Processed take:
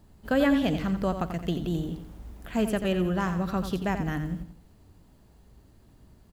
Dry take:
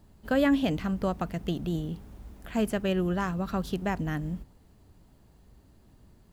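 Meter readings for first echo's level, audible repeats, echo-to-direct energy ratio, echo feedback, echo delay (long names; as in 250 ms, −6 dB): −9.0 dB, 3, −8.5 dB, 36%, 87 ms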